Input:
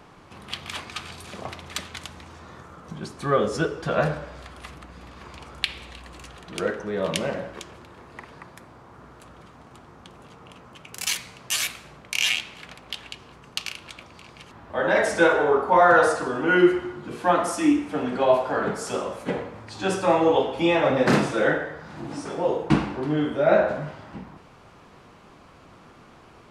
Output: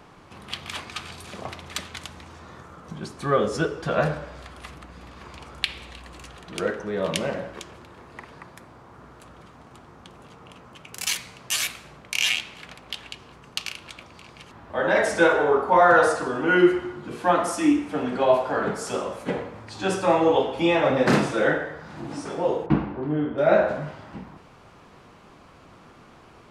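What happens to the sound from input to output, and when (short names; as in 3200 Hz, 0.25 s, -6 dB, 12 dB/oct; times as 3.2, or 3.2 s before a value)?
22.66–23.38 tape spacing loss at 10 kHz 36 dB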